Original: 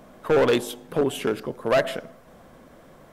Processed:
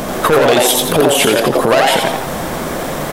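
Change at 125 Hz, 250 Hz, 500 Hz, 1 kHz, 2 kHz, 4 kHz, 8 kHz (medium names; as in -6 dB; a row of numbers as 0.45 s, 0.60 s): +12.5 dB, +11.5 dB, +10.5 dB, +16.5 dB, +14.5 dB, +18.5 dB, +23.0 dB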